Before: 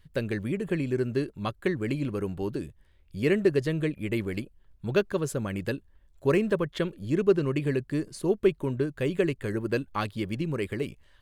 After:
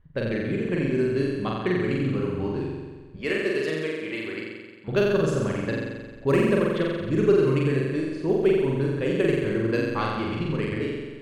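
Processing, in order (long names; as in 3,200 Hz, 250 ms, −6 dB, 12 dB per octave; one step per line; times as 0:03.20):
low-pass that shuts in the quiet parts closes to 1,200 Hz, open at −20.5 dBFS
0:03.16–0:04.88: meter weighting curve A
on a send: flutter between parallel walls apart 7.6 metres, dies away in 1.4 s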